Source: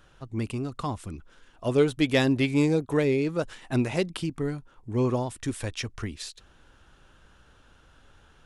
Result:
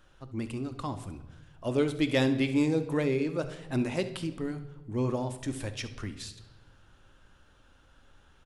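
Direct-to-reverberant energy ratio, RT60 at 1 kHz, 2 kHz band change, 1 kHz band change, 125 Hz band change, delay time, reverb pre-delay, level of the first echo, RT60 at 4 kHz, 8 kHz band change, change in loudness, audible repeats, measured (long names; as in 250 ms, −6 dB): 9.0 dB, 1.0 s, −4.0 dB, −4.0 dB, −4.5 dB, 69 ms, 3 ms, −16.0 dB, 0.95 s, −4.0 dB, −3.5 dB, 1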